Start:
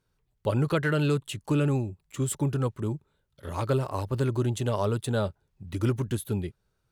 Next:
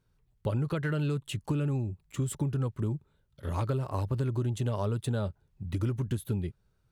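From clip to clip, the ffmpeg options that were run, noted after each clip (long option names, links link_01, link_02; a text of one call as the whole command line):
ffmpeg -i in.wav -af "bass=frequency=250:gain=6,treble=frequency=4000:gain=-2,acompressor=threshold=-26dB:ratio=6,volume=-1dB" out.wav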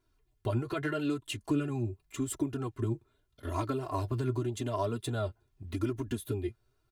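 ffmpeg -i in.wav -af "flanger=delay=3:depth=5.7:regen=42:speed=0.84:shape=sinusoidal,lowshelf=frequency=77:gain=-7.5,aecho=1:1:2.9:0.92,volume=2.5dB" out.wav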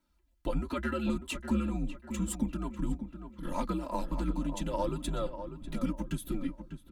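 ffmpeg -i in.wav -filter_complex "[0:a]afreqshift=-78,asplit=2[link_01][link_02];[link_02]adelay=596,lowpass=frequency=1900:poles=1,volume=-9dB,asplit=2[link_03][link_04];[link_04]adelay=596,lowpass=frequency=1900:poles=1,volume=0.38,asplit=2[link_05][link_06];[link_06]adelay=596,lowpass=frequency=1900:poles=1,volume=0.38,asplit=2[link_07][link_08];[link_08]adelay=596,lowpass=frequency=1900:poles=1,volume=0.38[link_09];[link_03][link_05][link_07][link_09]amix=inputs=4:normalize=0[link_10];[link_01][link_10]amix=inputs=2:normalize=0" out.wav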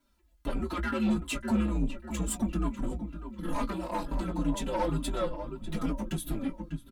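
ffmpeg -i in.wav -filter_complex "[0:a]asoftclip=type=tanh:threshold=-30dB,asplit=2[link_01][link_02];[link_02]adelay=18,volume=-10dB[link_03];[link_01][link_03]amix=inputs=2:normalize=0,asplit=2[link_04][link_05];[link_05]adelay=4.5,afreqshift=-2.2[link_06];[link_04][link_06]amix=inputs=2:normalize=1,volume=8dB" out.wav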